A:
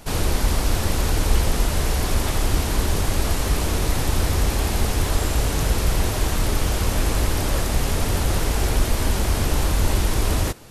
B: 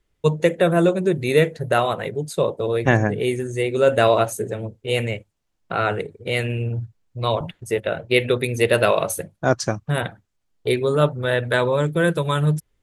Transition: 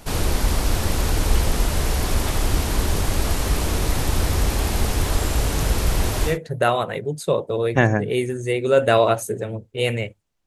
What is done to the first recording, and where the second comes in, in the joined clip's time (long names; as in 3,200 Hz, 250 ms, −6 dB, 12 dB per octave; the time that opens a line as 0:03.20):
A
0:06.31: continue with B from 0:01.41, crossfade 0.14 s